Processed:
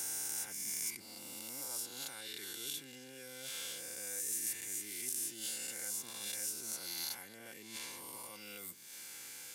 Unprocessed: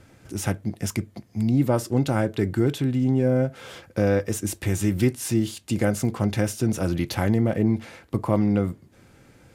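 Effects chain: reverse spectral sustain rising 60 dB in 1.56 s; reverse; compression 5:1, threshold -29 dBFS, peak gain reduction 14 dB; reverse; differentiator; comb of notches 630 Hz; three bands compressed up and down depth 70%; trim +3 dB

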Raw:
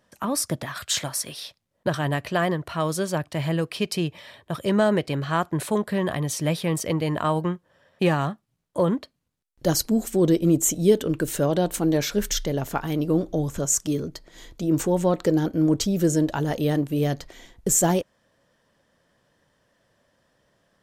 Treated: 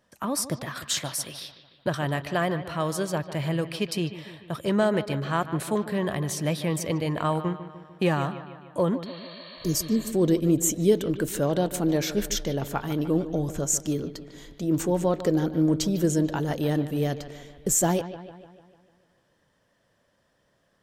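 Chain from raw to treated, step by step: spectral replace 9.09–10.08 s, 490–4600 Hz before; bucket-brigade echo 149 ms, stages 4096, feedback 56%, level -13 dB; trim -2.5 dB

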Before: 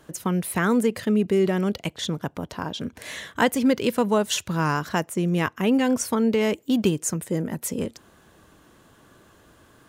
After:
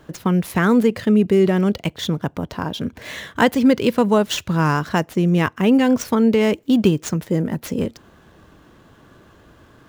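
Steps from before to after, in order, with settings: median filter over 5 samples; bass shelf 240 Hz +4 dB; trim +4 dB

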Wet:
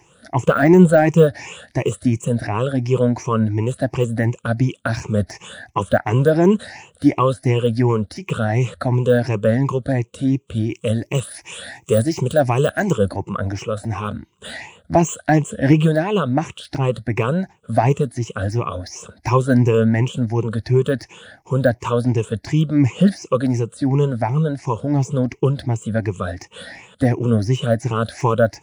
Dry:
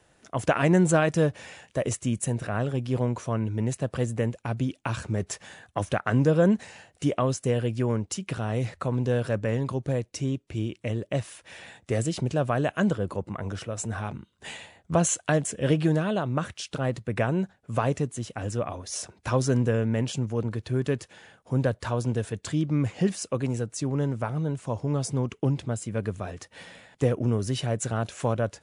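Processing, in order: drifting ripple filter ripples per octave 0.73, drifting +2.8 Hz, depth 19 dB; de-esser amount 95%; 10.70–13.09 s: treble shelf 6.4 kHz +12 dB; trim +5.5 dB

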